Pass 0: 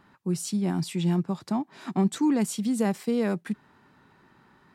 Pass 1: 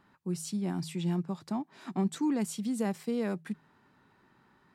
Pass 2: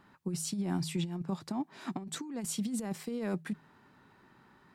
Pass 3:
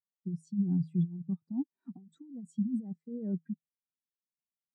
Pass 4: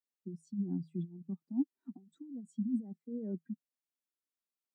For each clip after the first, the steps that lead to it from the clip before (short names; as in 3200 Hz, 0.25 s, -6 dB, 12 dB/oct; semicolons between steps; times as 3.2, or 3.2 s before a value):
de-hum 79.9 Hz, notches 2; gain -6 dB
negative-ratio compressor -33 dBFS, ratio -0.5
spectral expander 2.5:1
ladder high-pass 220 Hz, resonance 40%; gain +5 dB